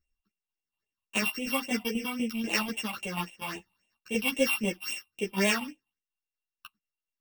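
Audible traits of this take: a buzz of ramps at a fixed pitch in blocks of 16 samples; phasing stages 6, 3.7 Hz, lowest notch 430–1400 Hz; tremolo saw down 4.1 Hz, depth 55%; a shimmering, thickened sound

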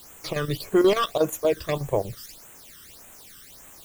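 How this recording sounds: chopped level 8.3 Hz, depth 65%, duty 75%; a quantiser's noise floor 8-bit, dither triangular; phasing stages 12, 1.7 Hz, lowest notch 720–4800 Hz

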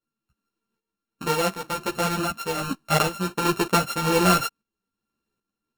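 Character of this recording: a buzz of ramps at a fixed pitch in blocks of 32 samples; tremolo saw up 1.3 Hz, depth 60%; a shimmering, thickened sound

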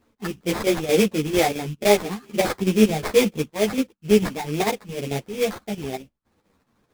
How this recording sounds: phasing stages 8, 2.2 Hz, lowest notch 560–3200 Hz; aliases and images of a low sample rate 2900 Hz, jitter 20%; chopped level 4.5 Hz, depth 60%, duty 80%; a shimmering, thickened sound

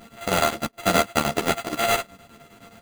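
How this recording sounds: a buzz of ramps at a fixed pitch in blocks of 64 samples; chopped level 9.6 Hz, depth 65%, duty 70%; aliases and images of a low sample rate 5400 Hz, jitter 0%; a shimmering, thickened sound

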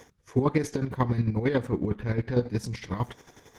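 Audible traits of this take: chopped level 11 Hz, depth 60%, duty 35%; Opus

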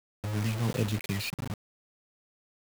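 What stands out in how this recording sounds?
phasing stages 12, 1.4 Hz, lowest notch 340–1700 Hz; a quantiser's noise floor 6-bit, dither none

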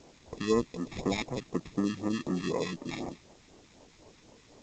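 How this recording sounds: aliases and images of a low sample rate 1500 Hz, jitter 0%; phasing stages 2, 4 Hz, lowest notch 510–3200 Hz; a quantiser's noise floor 10-bit, dither triangular; G.722

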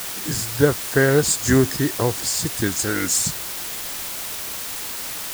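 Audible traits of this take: a quantiser's noise floor 6-bit, dither triangular

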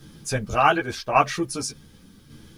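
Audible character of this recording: tremolo saw down 0.87 Hz, depth 50%; a quantiser's noise floor 12-bit, dither triangular; a shimmering, thickened sound

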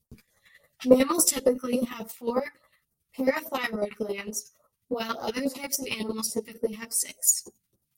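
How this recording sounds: phasing stages 2, 3.5 Hz, lowest notch 480–2700 Hz; chopped level 11 Hz, depth 65%, duty 20%; a shimmering, thickened sound

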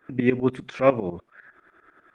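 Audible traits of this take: tremolo saw up 10 Hz, depth 85%; Opus

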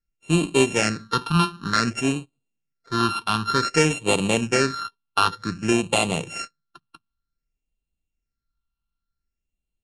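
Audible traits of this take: a buzz of ramps at a fixed pitch in blocks of 32 samples; phasing stages 6, 0.54 Hz, lowest notch 530–1500 Hz; MP3

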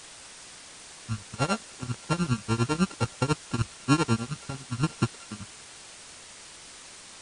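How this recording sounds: a buzz of ramps at a fixed pitch in blocks of 32 samples; tremolo triangle 10 Hz, depth 100%; a quantiser's noise floor 8-bit, dither triangular; MP3

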